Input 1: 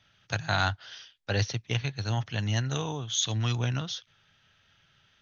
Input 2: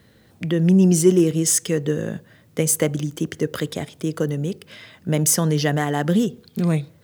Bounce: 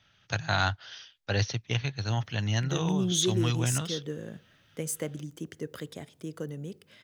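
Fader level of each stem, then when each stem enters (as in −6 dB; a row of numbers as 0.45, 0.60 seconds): 0.0, −14.0 decibels; 0.00, 2.20 seconds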